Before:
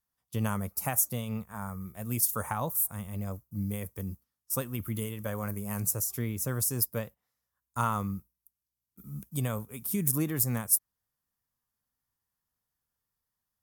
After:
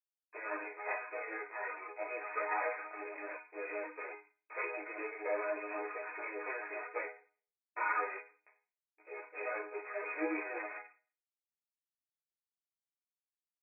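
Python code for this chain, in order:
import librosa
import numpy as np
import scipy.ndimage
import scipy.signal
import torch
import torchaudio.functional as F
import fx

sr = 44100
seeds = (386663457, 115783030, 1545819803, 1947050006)

y = np.r_[np.sort(x[:len(x) // 16 * 16].reshape(-1, 16), axis=1).ravel(), x[len(x) // 16 * 16:]]
y = fx.fuzz(y, sr, gain_db=38.0, gate_db=-45.0)
y = fx.brickwall_bandpass(y, sr, low_hz=320.0, high_hz=2600.0)
y = fx.resonator_bank(y, sr, root=56, chord='minor', decay_s=0.4)
y = fx.ensemble(y, sr)
y = F.gain(torch.from_numpy(y), 7.5).numpy()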